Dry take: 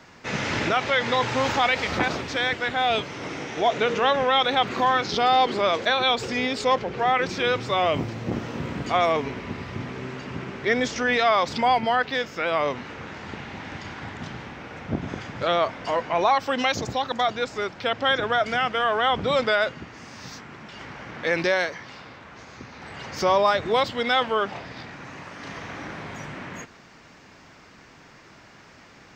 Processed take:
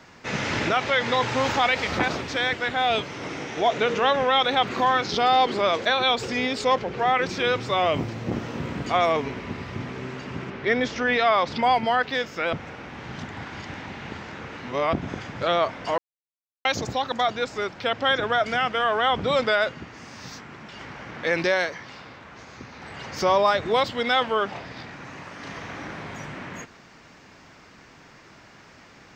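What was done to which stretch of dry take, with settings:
10.5–11.63 LPF 4500 Hz
12.53–14.93 reverse
15.98–16.65 mute

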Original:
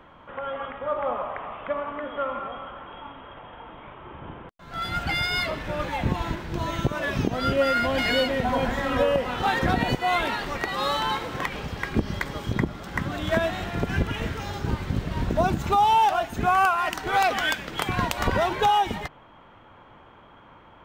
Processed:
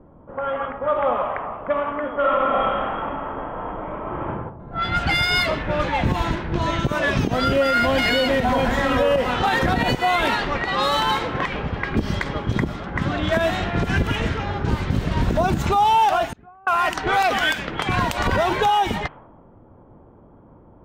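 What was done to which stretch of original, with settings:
2.17–4.26 reverb throw, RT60 1.3 s, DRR -6.5 dB
16.27–16.67 flipped gate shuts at -26 dBFS, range -30 dB
whole clip: low-pass opened by the level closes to 380 Hz, open at -22 dBFS; limiter -17.5 dBFS; gain +7 dB

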